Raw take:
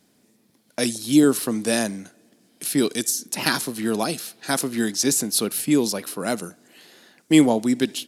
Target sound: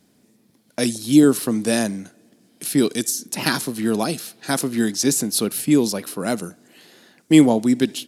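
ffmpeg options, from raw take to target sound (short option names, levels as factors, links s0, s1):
-af "lowshelf=f=320:g=5.5"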